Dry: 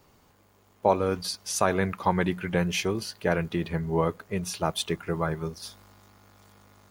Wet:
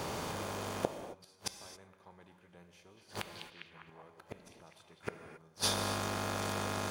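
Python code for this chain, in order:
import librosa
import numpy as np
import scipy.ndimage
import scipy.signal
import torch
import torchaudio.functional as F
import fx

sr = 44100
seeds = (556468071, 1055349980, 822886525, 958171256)

y = fx.bin_compress(x, sr, power=0.6)
y = fx.gate_flip(y, sr, shuts_db=-20.0, range_db=-39)
y = fx.echo_stepped(y, sr, ms=201, hz=3600.0, octaves=-0.7, feedback_pct=70, wet_db=-3.0, at=(2.96, 4.99), fade=0.02)
y = fx.rev_gated(y, sr, seeds[0], gate_ms=300, shape='flat', drr_db=7.0)
y = y * librosa.db_to_amplitude(3.0)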